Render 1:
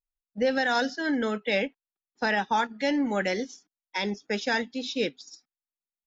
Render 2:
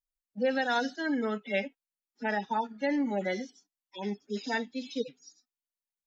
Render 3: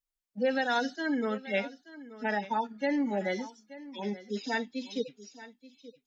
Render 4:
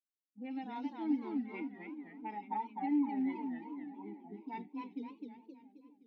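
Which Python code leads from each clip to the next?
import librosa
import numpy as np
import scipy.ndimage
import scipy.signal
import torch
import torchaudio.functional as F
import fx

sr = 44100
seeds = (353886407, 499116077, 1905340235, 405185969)

y1 = fx.hpss_only(x, sr, part='harmonic')
y1 = fx.high_shelf(y1, sr, hz=4000.0, db=5.5)
y1 = y1 * librosa.db_to_amplitude(-3.0)
y2 = y1 + 10.0 ** (-17.0 / 20.0) * np.pad(y1, (int(879 * sr / 1000.0), 0))[:len(y1)]
y3 = fx.vowel_filter(y2, sr, vowel='u')
y3 = fx.env_lowpass(y3, sr, base_hz=370.0, full_db=-36.0)
y3 = fx.echo_warbled(y3, sr, ms=261, feedback_pct=48, rate_hz=2.8, cents=195, wet_db=-4.0)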